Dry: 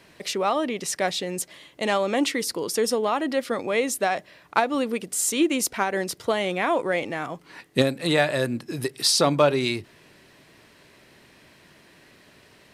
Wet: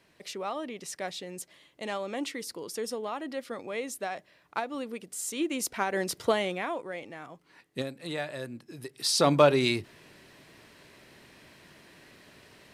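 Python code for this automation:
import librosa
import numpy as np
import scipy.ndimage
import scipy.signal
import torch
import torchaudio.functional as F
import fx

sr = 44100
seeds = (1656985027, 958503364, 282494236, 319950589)

y = fx.gain(x, sr, db=fx.line((5.24, -11.0), (6.27, -0.5), (6.84, -13.5), (8.87, -13.5), (9.3, -1.0)))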